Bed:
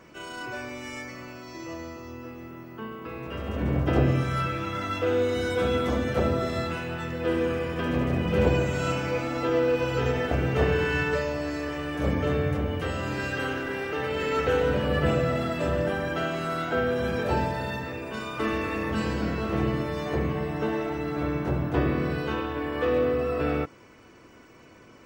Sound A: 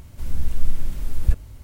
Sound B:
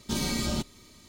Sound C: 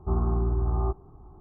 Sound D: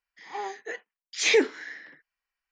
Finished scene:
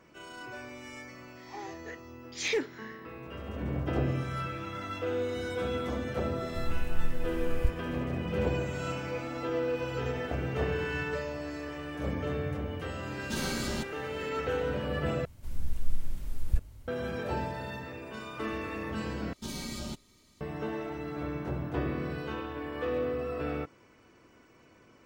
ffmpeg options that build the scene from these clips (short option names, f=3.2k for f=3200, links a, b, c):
-filter_complex "[1:a]asplit=2[a][b];[2:a]asplit=2[c][d];[0:a]volume=-7.5dB[e];[4:a]asoftclip=type=hard:threshold=-13.5dB[f];[e]asplit=3[g][h][i];[g]atrim=end=15.254[j];[b]atrim=end=1.63,asetpts=PTS-STARTPTS,volume=-9dB[k];[h]atrim=start=16.876:end=19.334[l];[d]atrim=end=1.08,asetpts=PTS-STARTPTS,volume=-9dB[m];[i]atrim=start=20.406[n];[f]atrim=end=2.51,asetpts=PTS-STARTPTS,volume=-9dB,afade=t=in:d=0.004:c=hsin,afade=t=out:st=2.506:d=0.004:c=hsin,adelay=1190[o];[a]atrim=end=1.63,asetpts=PTS-STARTPTS,volume=-10dB,afade=t=in:d=0.004:c=hsin,afade=t=out:st=1.626:d=0.004:c=hsin,adelay=6360[p];[c]atrim=end=1.08,asetpts=PTS-STARTPTS,volume=-5dB,afade=t=in:d=0.004:c=hsin,afade=t=out:st=1.076:d=0.004:c=hsin,adelay=13210[q];[j][k]acrossfade=d=0.004:c1=hsin:c2=hsin[r];[r][l]acrossfade=d=0.004:c1=hsin:c2=hsin[s];[s][m]acrossfade=d=0.004:c1=hsin:c2=hsin[t];[t][n]acrossfade=d=0.004:c1=hsin:c2=hsin[u];[u][o][p][q]amix=inputs=4:normalize=0"